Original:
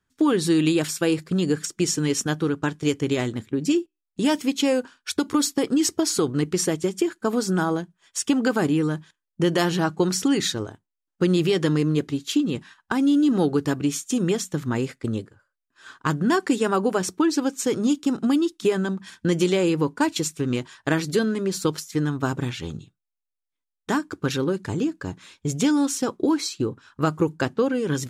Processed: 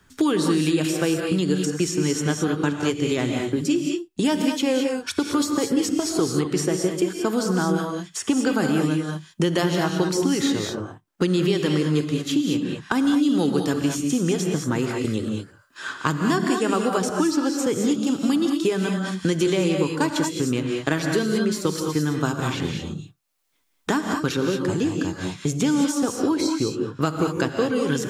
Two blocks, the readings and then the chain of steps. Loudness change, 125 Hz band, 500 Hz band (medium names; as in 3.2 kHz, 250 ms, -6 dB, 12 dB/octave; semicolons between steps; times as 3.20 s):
+0.5 dB, +1.0 dB, +0.5 dB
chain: gated-style reverb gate 240 ms rising, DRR 3 dB; three bands compressed up and down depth 70%; trim -1.5 dB